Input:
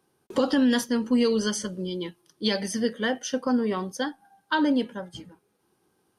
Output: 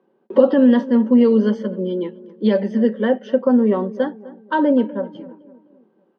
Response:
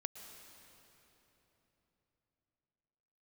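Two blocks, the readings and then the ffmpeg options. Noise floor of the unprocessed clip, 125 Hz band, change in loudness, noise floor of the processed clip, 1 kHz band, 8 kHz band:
-72 dBFS, no reading, +8.5 dB, -63 dBFS, +5.0 dB, under -25 dB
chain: -filter_complex "[0:a]tiltshelf=f=880:g=6.5,bandreject=f=790:w=12,aecho=1:1:5.2:0.31,crystalizer=i=4:c=0,highpass=f=210:w=0.5412,highpass=f=210:w=1.3066,equalizer=f=220:t=q:w=4:g=4,equalizer=f=530:t=q:w=4:g=8,equalizer=f=850:t=q:w=4:g=4,equalizer=f=1400:t=q:w=4:g=-3,equalizer=f=2300:t=q:w=4:g=-6,lowpass=f=2500:w=0.5412,lowpass=f=2500:w=1.3066,asplit=2[s0][s1];[s1]adelay=255,lowpass=f=1300:p=1,volume=0.133,asplit=2[s2][s3];[s3]adelay=255,lowpass=f=1300:p=1,volume=0.47,asplit=2[s4][s5];[s5]adelay=255,lowpass=f=1300:p=1,volume=0.47,asplit=2[s6][s7];[s7]adelay=255,lowpass=f=1300:p=1,volume=0.47[s8];[s0][s2][s4][s6][s8]amix=inputs=5:normalize=0,volume=1.26"

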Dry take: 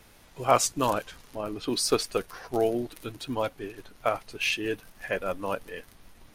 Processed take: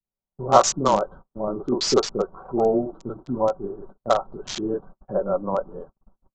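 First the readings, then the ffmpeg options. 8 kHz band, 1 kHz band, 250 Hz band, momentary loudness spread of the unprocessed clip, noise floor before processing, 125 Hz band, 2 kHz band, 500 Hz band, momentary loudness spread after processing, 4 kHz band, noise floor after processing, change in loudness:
+2.5 dB, +6.5 dB, +6.0 dB, 14 LU, -56 dBFS, +5.0 dB, -6.5 dB, +6.5 dB, 15 LU, +2.5 dB, under -85 dBFS, +5.5 dB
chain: -filter_complex "[0:a]asuperstop=centerf=2100:order=8:qfactor=1.4,equalizer=f=2800:t=o:w=0.53:g=-10.5,aecho=1:1:5.3:0.44,acrossover=split=120|1200[s0][s1][s2];[s0]alimiter=level_in=6.31:limit=0.0631:level=0:latency=1:release=260,volume=0.158[s3];[s1]dynaudnorm=f=200:g=3:m=1.58[s4];[s2]acrusher=bits=4:mix=0:aa=0.000001[s5];[s3][s4][s5]amix=inputs=3:normalize=0,acrossover=split=370[s6][s7];[s7]adelay=40[s8];[s6][s8]amix=inputs=2:normalize=0,aresample=16000,aresample=44100,agate=range=0.00794:threshold=0.00631:ratio=16:detection=peak,volume=1.68"

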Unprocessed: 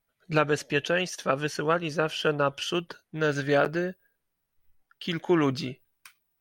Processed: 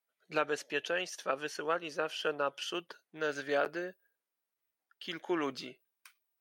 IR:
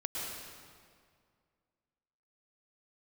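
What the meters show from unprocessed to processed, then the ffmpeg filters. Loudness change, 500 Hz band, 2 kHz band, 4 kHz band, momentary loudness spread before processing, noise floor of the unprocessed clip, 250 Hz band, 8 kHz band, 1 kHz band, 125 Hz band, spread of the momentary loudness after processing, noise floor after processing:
-8.5 dB, -8.5 dB, -7.0 dB, -7.0 dB, 9 LU, -80 dBFS, -12.0 dB, -7.0 dB, -7.0 dB, -22.0 dB, 10 LU, under -85 dBFS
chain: -af "highpass=360,volume=0.447"

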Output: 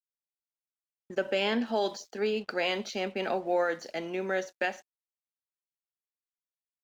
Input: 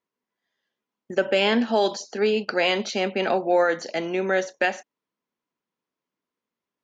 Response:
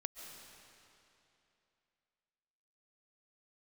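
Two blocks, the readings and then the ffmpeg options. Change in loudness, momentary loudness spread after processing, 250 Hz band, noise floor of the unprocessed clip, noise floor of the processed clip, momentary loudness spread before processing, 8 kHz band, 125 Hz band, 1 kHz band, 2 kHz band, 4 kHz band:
-7.5 dB, 7 LU, -8.0 dB, under -85 dBFS, under -85 dBFS, 7 LU, no reading, -8.0 dB, -7.5 dB, -7.5 dB, -7.5 dB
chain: -af "aeval=exprs='sgn(val(0))*max(abs(val(0))-0.00282,0)':c=same,volume=0.422"

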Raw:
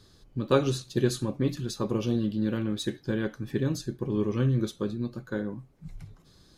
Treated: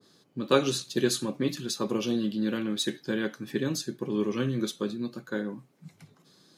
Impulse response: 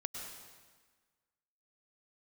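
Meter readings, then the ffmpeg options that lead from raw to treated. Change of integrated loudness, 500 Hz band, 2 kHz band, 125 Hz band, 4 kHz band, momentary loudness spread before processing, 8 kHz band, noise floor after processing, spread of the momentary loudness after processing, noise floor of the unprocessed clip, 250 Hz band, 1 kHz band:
-0.5 dB, 0.0 dB, +3.5 dB, -7.5 dB, +5.5 dB, 12 LU, +6.0 dB, -64 dBFS, 8 LU, -58 dBFS, -0.5 dB, +1.5 dB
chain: -af "highpass=f=160:w=0.5412,highpass=f=160:w=1.3066,adynamicequalizer=threshold=0.00501:dfrequency=1500:dqfactor=0.7:tfrequency=1500:tqfactor=0.7:attack=5:release=100:ratio=0.375:range=3:mode=boostabove:tftype=highshelf"

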